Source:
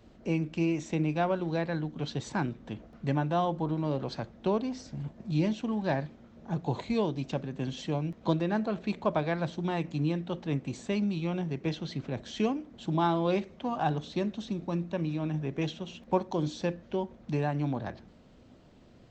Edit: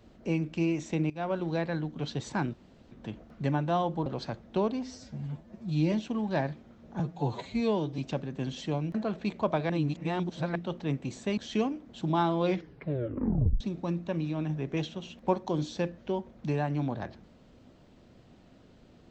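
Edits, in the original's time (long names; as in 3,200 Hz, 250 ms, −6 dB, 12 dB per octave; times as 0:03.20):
0:01.10–0:01.38: fade in, from −18.5 dB
0:02.54: splice in room tone 0.37 s
0:03.69–0:03.96: remove
0:04.73–0:05.46: time-stretch 1.5×
0:06.53–0:07.19: time-stretch 1.5×
0:08.15–0:08.57: remove
0:09.32–0:10.18: reverse
0:11.00–0:12.22: remove
0:13.30: tape stop 1.15 s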